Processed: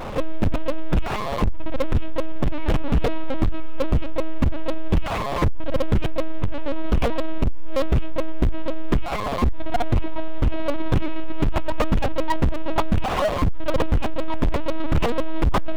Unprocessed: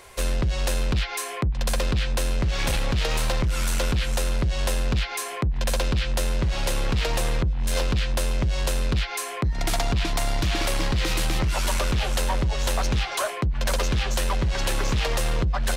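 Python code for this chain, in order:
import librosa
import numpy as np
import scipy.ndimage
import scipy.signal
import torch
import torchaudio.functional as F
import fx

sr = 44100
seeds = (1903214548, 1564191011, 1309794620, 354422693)

y = scipy.signal.medfilt(x, 25)
y = fx.lpc_vocoder(y, sr, seeds[0], excitation='pitch_kept', order=10)
y = fx.power_curve(y, sr, exponent=0.5)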